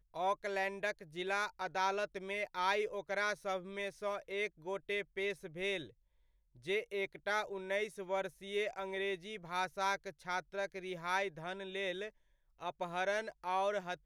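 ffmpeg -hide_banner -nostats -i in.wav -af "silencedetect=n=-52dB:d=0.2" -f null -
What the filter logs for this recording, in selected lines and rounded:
silence_start: 5.90
silence_end: 6.57 | silence_duration: 0.67
silence_start: 12.09
silence_end: 12.59 | silence_duration: 0.50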